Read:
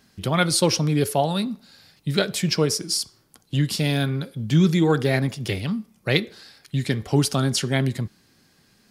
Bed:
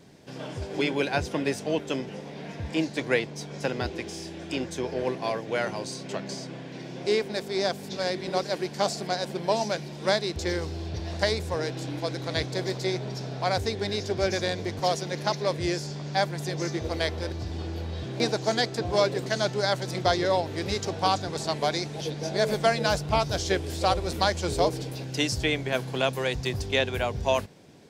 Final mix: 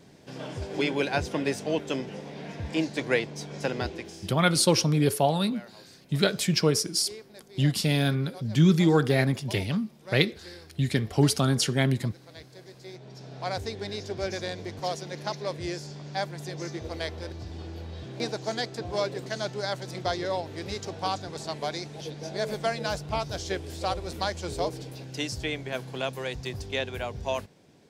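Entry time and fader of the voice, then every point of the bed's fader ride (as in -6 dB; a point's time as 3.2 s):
4.05 s, -2.0 dB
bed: 3.83 s -0.5 dB
4.71 s -18.5 dB
12.74 s -18.5 dB
13.46 s -5.5 dB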